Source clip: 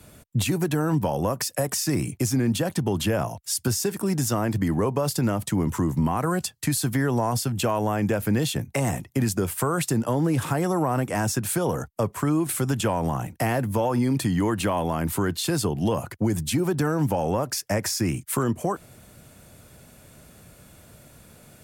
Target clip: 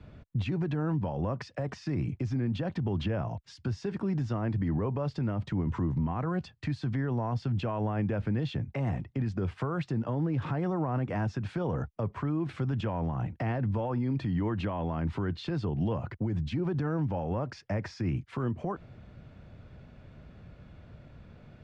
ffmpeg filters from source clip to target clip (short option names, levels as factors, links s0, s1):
-af "lowshelf=f=160:g=9,alimiter=limit=0.119:level=0:latency=1:release=82,lowpass=f=5100:w=0.5412,lowpass=f=5100:w=1.3066,bass=f=250:g=1,treble=f=4000:g=-13,volume=0.562"